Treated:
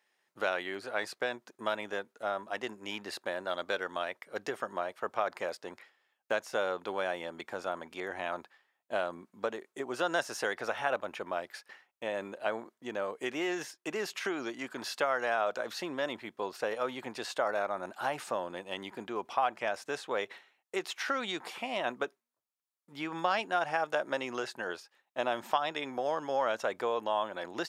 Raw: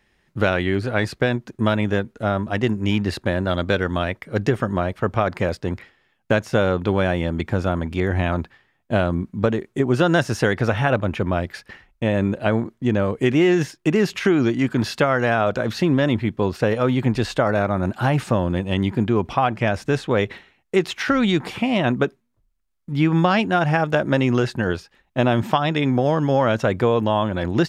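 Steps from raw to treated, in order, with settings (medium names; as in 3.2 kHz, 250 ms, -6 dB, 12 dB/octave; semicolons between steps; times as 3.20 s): high-pass 710 Hz 12 dB/octave; peaking EQ 2.3 kHz -6 dB 2.2 oct; trim -5 dB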